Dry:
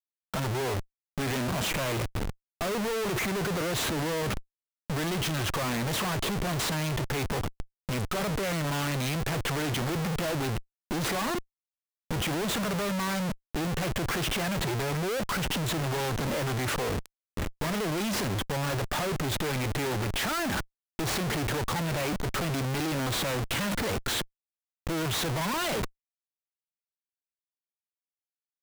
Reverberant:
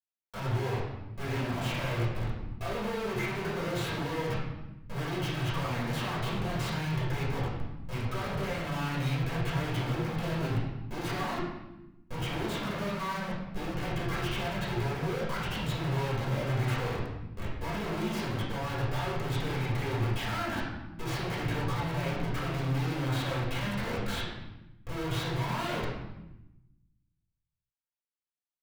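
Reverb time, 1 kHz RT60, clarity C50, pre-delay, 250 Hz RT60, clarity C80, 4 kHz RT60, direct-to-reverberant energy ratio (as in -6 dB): 0.95 s, 0.90 s, 1.0 dB, 4 ms, 1.4 s, 4.0 dB, 0.80 s, -9.5 dB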